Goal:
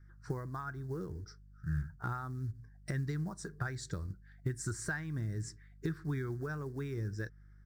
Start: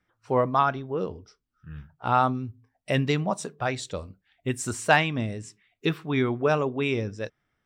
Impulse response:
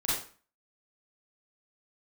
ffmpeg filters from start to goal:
-af "highshelf=f=9.7k:g=-3,acrusher=bits=7:mode=log:mix=0:aa=0.000001,acompressor=threshold=-36dB:ratio=12,aeval=exprs='val(0)+0.000708*(sin(2*PI*50*n/s)+sin(2*PI*2*50*n/s)/2+sin(2*PI*3*50*n/s)/3+sin(2*PI*4*50*n/s)/4+sin(2*PI*5*50*n/s)/5)':c=same,firequalizer=gain_entry='entry(160,0);entry(240,-13);entry(330,-3);entry(550,-19);entry(1100,-11);entry(1600,1);entry(2700,-27);entry(4600,-6);entry(11000,-9)':delay=0.05:min_phase=1,volume=7.5dB"

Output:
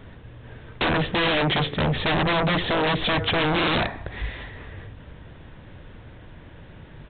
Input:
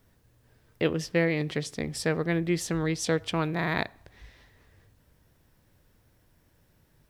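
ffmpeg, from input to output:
-af "aeval=exprs='(tanh(12.6*val(0)+0.4)-tanh(0.4))/12.6':c=same,aresample=8000,aeval=exprs='0.119*sin(PI/2*7.94*val(0)/0.119)':c=same,aresample=44100"

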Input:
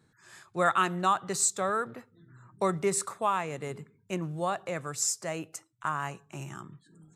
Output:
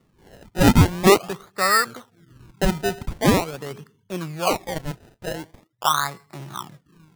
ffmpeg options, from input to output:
-af "lowpass=f=1.3k:t=q:w=3.6,acrusher=samples=27:mix=1:aa=0.000001:lfo=1:lforange=27:lforate=0.44,volume=3dB"

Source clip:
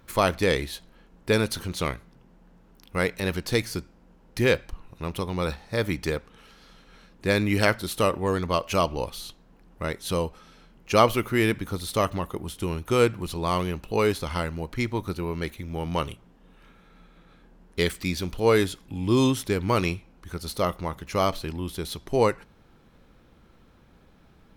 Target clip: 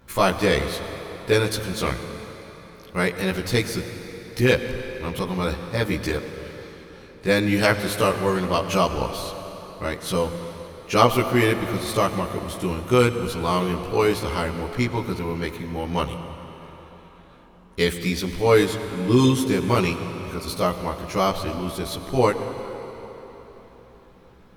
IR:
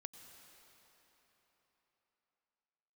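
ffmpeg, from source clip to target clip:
-filter_complex "[0:a]asplit=2[a][b];[1:a]atrim=start_sample=2205,adelay=16[c];[b][c]afir=irnorm=-1:irlink=0,volume=7.5dB[d];[a][d]amix=inputs=2:normalize=0,volume=-1dB"

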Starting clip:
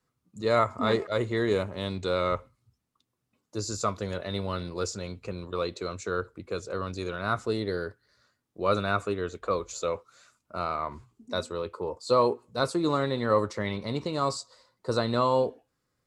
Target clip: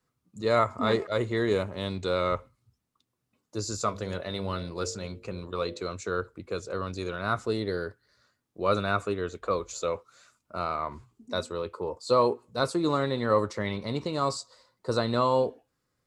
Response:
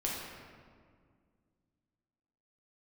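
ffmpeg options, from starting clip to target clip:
-filter_complex "[0:a]asettb=1/sr,asplit=3[a][b][c];[a]atrim=end=3.824[d];[b]atrim=start=3.82:end=5.82,asetpts=PTS-STARTPTS,afade=t=in:d=0.004:c=qsin,afade=t=out:st=1.996:d=0.004:c=qsin,bandreject=f=50.28:t=h:w=4,bandreject=f=100.56:t=h:w=4,bandreject=f=150.84:t=h:w=4,bandreject=f=201.12:t=h:w=4,bandreject=f=251.4:t=h:w=4,bandreject=f=301.68:t=h:w=4,bandreject=f=351.96:t=h:w=4,bandreject=f=402.24:t=h:w=4,bandreject=f=452.52:t=h:w=4,bandreject=f=502.8:t=h:w=4,bandreject=f=553.08:t=h:w=4,bandreject=f=603.36:t=h:w=4,bandreject=f=653.64:t=h:w=4[e];[c]atrim=start=5.816[f];[d][e]acrossfade=d=0.004:c1=hsin:c2=qsin[g];[g][f]acrossfade=d=0.004:c1=qsin:c2=hsin"

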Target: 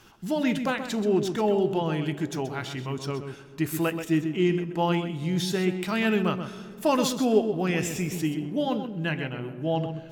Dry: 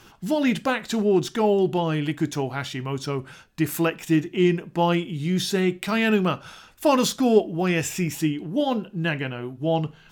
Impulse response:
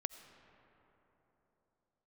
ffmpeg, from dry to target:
-filter_complex "[0:a]asplit=2[a][b];[1:a]atrim=start_sample=2205,lowshelf=f=480:g=7,adelay=129[c];[b][c]afir=irnorm=-1:irlink=0,volume=-10dB[d];[a][d]amix=inputs=2:normalize=0,volume=-4dB"

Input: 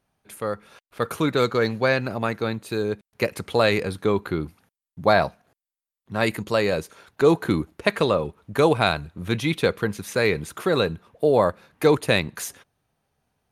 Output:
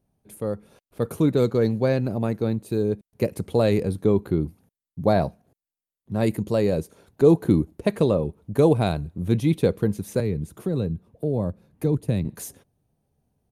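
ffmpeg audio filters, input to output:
-filter_complex "[0:a]firequalizer=gain_entry='entry(180,0);entry(1300,-18);entry(9900,-7)':delay=0.05:min_phase=1,asettb=1/sr,asplit=3[a][b][c];[a]atrim=end=10.204[d];[b]atrim=start=10.2:end=12.25,asetpts=PTS-STARTPTS,afade=t=in:d=0.004:c=qsin,afade=t=out:st=2.046:d=0.004:c=qsin,acrossover=split=240[e][f];[f]acompressor=threshold=-52dB:ratio=1.5[g];[e][g]amix=inputs=2:normalize=0[h];[c]atrim=start=12.246[i];[d][h]acrossfade=d=0.004:c1=hsin:c2=qsin[j];[j][i]acrossfade=d=0.004:c1=qsin:c2=hsin,volume=5dB"

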